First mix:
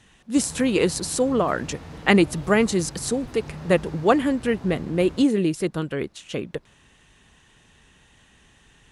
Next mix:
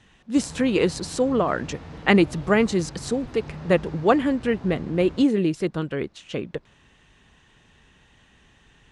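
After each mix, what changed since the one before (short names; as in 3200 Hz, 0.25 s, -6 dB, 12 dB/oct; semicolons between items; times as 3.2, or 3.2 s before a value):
master: add air absorption 73 m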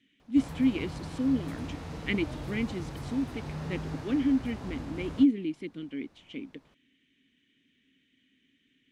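speech: add vowel filter i; master: remove air absorption 73 m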